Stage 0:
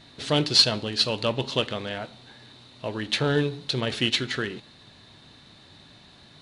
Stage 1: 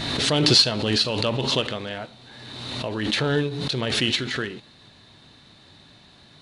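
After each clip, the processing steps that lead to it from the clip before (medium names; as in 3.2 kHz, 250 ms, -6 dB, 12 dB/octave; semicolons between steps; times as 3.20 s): swell ahead of each attack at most 32 dB/s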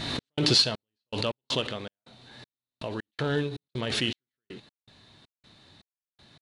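trance gate "x.xx..x.x" 80 bpm -60 dB; trim -5 dB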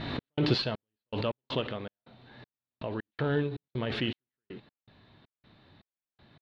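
distance through air 350 m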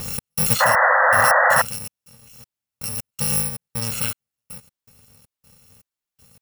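bit-reversed sample order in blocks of 128 samples; painted sound noise, 0.60–1.62 s, 490–2000 Hz -22 dBFS; trim +6.5 dB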